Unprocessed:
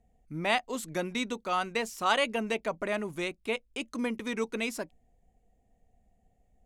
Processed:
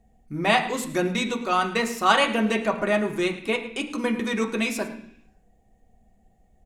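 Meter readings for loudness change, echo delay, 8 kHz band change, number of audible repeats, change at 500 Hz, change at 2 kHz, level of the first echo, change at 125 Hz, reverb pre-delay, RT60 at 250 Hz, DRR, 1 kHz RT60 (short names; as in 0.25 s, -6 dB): +7.5 dB, 0.107 s, +6.5 dB, 1, +7.0 dB, +7.5 dB, -16.0 dB, +9.0 dB, 3 ms, 0.85 s, 1.5 dB, 0.70 s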